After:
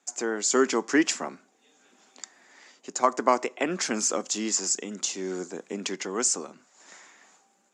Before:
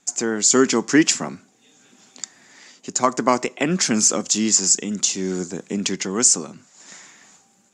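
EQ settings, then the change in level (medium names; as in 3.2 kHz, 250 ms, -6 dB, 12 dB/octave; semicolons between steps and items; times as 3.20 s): high-pass 310 Hz 12 dB/octave; bass shelf 450 Hz -5.5 dB; treble shelf 2.1 kHz -10.5 dB; 0.0 dB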